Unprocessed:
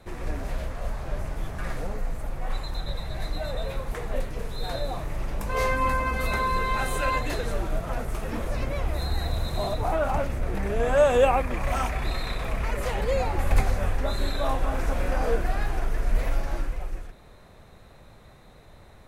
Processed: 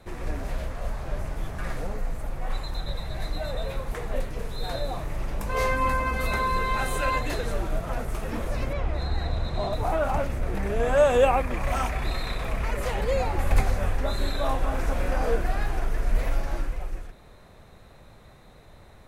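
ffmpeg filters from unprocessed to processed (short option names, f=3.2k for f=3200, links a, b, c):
-filter_complex "[0:a]asettb=1/sr,asplit=3[a][b][c];[a]atrim=end=8.734[d];[b]atrim=start=8.73:end=9.73,asetpts=PTS-STARTPTS,afade=t=in:d=0.004:c=qsin,afade=t=out:st=0.996:d=0.004:c=qsin,adynamicsmooth=sensitivity=2.5:basefreq=4.6k[e];[c]atrim=start=9.726[f];[d][e]acrossfade=d=0.004:c1=hsin:c2=qsin[g];[g][f]acrossfade=d=0.004:c1=qsin:c2=hsin"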